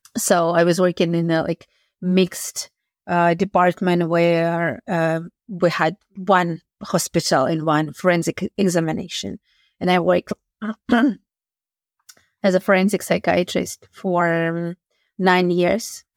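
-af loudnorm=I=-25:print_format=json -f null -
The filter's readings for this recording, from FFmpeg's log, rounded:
"input_i" : "-19.9",
"input_tp" : "-1.9",
"input_lra" : "1.7",
"input_thresh" : "-30.4",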